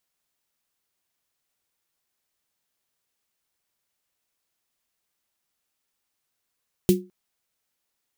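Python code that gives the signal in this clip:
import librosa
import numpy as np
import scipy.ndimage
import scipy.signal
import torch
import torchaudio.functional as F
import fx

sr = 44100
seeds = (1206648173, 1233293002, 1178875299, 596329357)

y = fx.drum_snare(sr, seeds[0], length_s=0.21, hz=190.0, second_hz=360.0, noise_db=-11, noise_from_hz=2500.0, decay_s=0.28, noise_decay_s=0.15)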